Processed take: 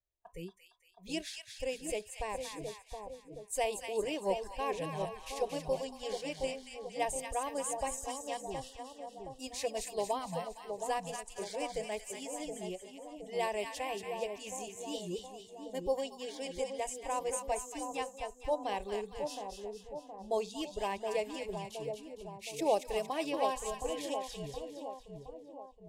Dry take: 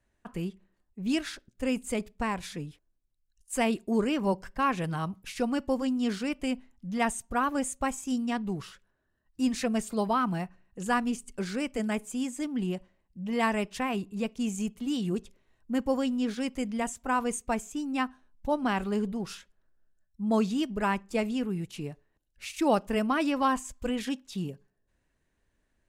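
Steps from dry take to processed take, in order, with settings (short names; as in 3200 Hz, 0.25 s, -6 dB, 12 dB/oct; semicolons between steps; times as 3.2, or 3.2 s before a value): fixed phaser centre 570 Hz, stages 4; spectral noise reduction 16 dB; split-band echo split 950 Hz, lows 0.719 s, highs 0.23 s, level -5.5 dB; gain -2.5 dB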